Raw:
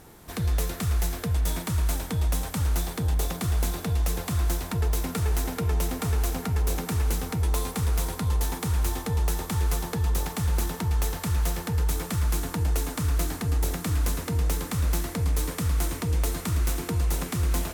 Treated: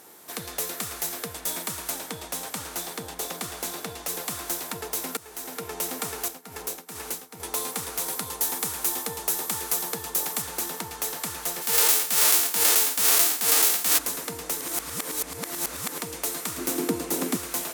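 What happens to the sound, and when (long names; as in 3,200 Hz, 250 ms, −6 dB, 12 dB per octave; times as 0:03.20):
0:01.90–0:04.09: high-shelf EQ 8,800 Hz −5.5 dB
0:05.17–0:05.77: fade in, from −17.5 dB
0:06.28–0:07.40: expander for the loud parts 2.5 to 1, over −35 dBFS
0:08.08–0:10.42: high-shelf EQ 7,500 Hz +5.5 dB
0:11.61–0:13.97: spectral envelope flattened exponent 0.3
0:14.61–0:15.98: reverse
0:16.58–0:17.37: parametric band 270 Hz +14.5 dB 1.6 octaves
whole clip: high-pass filter 330 Hz 12 dB per octave; high-shelf EQ 4,900 Hz +7.5 dB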